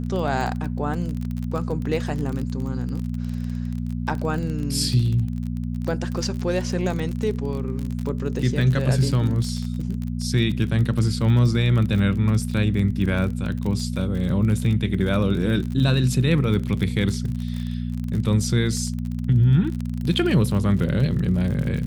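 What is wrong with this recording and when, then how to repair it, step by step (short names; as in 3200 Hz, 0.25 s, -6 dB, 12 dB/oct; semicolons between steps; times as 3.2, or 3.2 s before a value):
crackle 35/s -27 dBFS
hum 60 Hz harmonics 4 -27 dBFS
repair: de-click; de-hum 60 Hz, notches 4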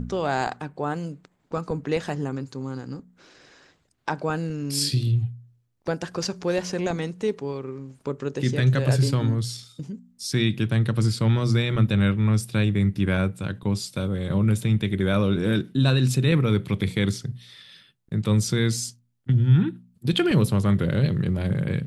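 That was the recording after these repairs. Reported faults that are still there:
none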